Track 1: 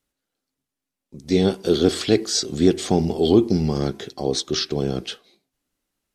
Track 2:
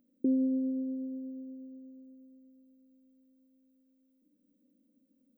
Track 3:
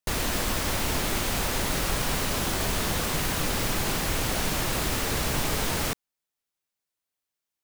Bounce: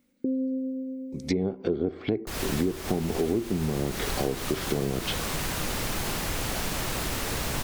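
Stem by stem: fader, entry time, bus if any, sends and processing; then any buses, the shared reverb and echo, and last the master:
+2.5 dB, 0.00 s, no send, treble cut that deepens with the level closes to 840 Hz, closed at −17.5 dBFS; parametric band 2,200 Hz +10.5 dB 0.24 octaves
−0.5 dB, 0.00 s, no send, parametric band 160 Hz +10 dB 1.9 octaves; comb filter 1.9 ms, depth 47%
−2.5 dB, 2.20 s, no send, pitch vibrato 6.5 Hz 66 cents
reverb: not used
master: downward compressor 8 to 1, threshold −23 dBFS, peak gain reduction 16 dB

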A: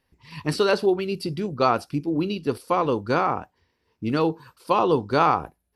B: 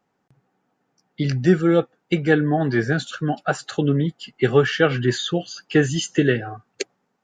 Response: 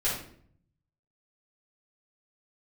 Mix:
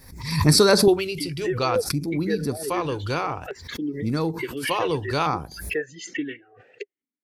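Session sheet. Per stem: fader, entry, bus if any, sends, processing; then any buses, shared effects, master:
+2.5 dB, 0.00 s, no send, bass and treble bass +9 dB, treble +13 dB; automatic ducking −8 dB, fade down 0.25 s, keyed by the second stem
−0.5 dB, 0.00 s, no send, reverb reduction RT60 1.8 s; formant filter swept between two vowels e-i 1.2 Hz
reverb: not used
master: parametric band 2,400 Hz +5.5 dB 0.74 octaves; auto-filter notch square 0.57 Hz 210–2,900 Hz; background raised ahead of every attack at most 79 dB per second

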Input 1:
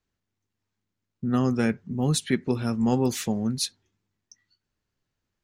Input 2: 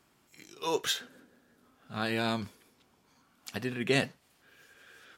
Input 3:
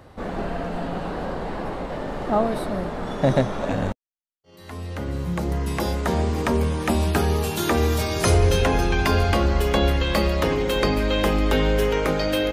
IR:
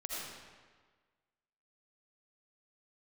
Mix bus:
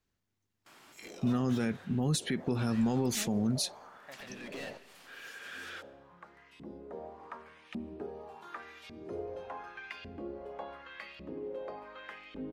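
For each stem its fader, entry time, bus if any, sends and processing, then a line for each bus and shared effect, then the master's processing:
−0.5 dB, 0.00 s, no send, no processing
−10.5 dB, 0.65 s, send −20.5 dB, noise gate with hold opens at −58 dBFS; downward compressor 5 to 1, threshold −35 dBFS, peak gain reduction 12 dB; mid-hump overdrive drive 30 dB, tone 5,100 Hz, clips at −19.5 dBFS; automatic ducking −11 dB, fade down 0.30 s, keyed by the first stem
−14.5 dB, 0.85 s, send −21 dB, auto-filter band-pass saw up 0.87 Hz 220–3,000 Hz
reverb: on, RT60 1.5 s, pre-delay 40 ms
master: brickwall limiter −21.5 dBFS, peak gain reduction 11.5 dB

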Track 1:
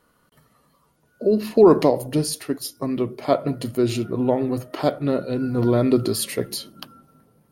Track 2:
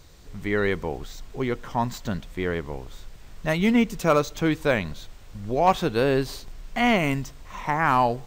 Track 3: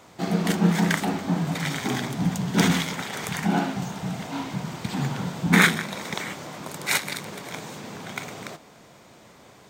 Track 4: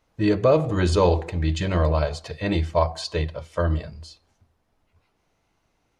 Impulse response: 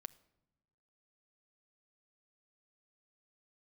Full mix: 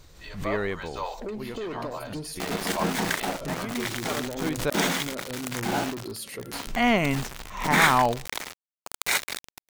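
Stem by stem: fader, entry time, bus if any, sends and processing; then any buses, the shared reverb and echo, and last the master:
−9.5 dB, 0.00 s, no send, downward compressor, threshold −18 dBFS, peak gain reduction 10 dB; soft clipping −19.5 dBFS, distortion −12 dB
−1.0 dB, 0.00 s, muted 0:04.70–0:06.67, no send, automatic ducking −14 dB, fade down 1.95 s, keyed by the fourth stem
−8.0 dB, 2.20 s, no send, high-pass filter 310 Hz 12 dB per octave; leveller curve on the samples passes 2; centre clipping without the shift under −19.5 dBFS
−7.5 dB, 0.00 s, no send, de-essing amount 95%; high-pass filter 740 Hz 24 dB per octave; multiband upward and downward expander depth 40%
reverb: not used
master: background raised ahead of every attack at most 94 dB per second

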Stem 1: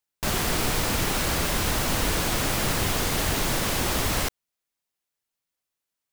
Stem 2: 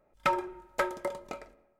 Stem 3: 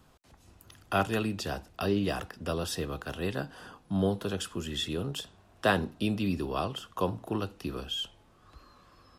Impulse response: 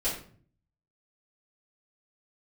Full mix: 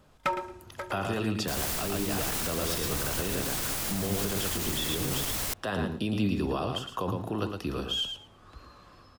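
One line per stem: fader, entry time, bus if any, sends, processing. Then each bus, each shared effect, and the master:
−8.0 dB, 1.25 s, bus A, no send, no echo send, high-shelf EQ 4,900 Hz +10 dB
+2.5 dB, 0.00 s, no bus, no send, echo send −15 dB, automatic ducking −22 dB, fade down 1.45 s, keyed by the third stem
0.0 dB, 0.00 s, bus A, no send, echo send −7.5 dB, brickwall limiter −22.5 dBFS, peak gain reduction 11.5 dB; high-shelf EQ 8,400 Hz −5 dB; automatic gain control gain up to 4.5 dB
bus A: 0.0 dB, brickwall limiter −21.5 dBFS, peak gain reduction 8 dB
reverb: not used
echo: repeating echo 112 ms, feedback 16%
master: no processing

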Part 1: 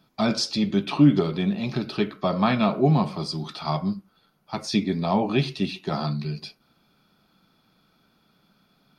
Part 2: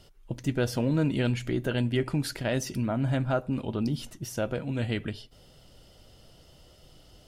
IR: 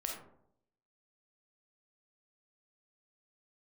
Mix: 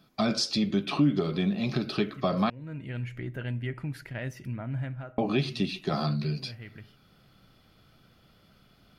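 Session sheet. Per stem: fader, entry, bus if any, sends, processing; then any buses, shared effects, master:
+1.0 dB, 0.00 s, muted 0:02.50–0:05.18, no send, notch filter 910 Hz, Q 6.4
−12.5 dB, 1.70 s, send −19.5 dB, octave-band graphic EQ 125/2,000/4,000/8,000 Hz +9/+11/−5/−6 dB; automatic ducking −11 dB, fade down 0.40 s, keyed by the first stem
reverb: on, RT60 0.70 s, pre-delay 5 ms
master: downward compressor 2 to 1, threshold −26 dBFS, peak gain reduction 9 dB

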